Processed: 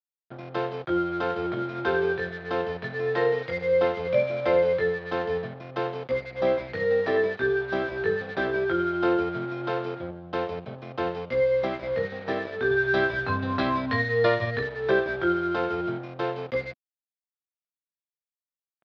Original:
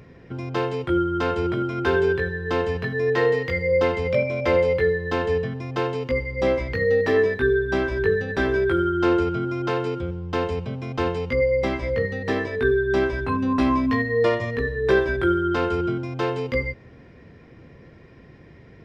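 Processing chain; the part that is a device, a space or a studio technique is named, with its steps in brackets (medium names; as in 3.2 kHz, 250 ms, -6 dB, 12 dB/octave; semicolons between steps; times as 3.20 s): 12.70–14.63 s: fifteen-band graphic EQ 100 Hz +12 dB, 1.6 kHz +7 dB, 4 kHz +9 dB; blown loudspeaker (crossover distortion -36 dBFS; cabinet simulation 170–4000 Hz, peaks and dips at 260 Hz -8 dB, 420 Hz -4 dB, 660 Hz +4 dB, 1 kHz -4 dB, 2 kHz -5 dB, 2.8 kHz -6 dB)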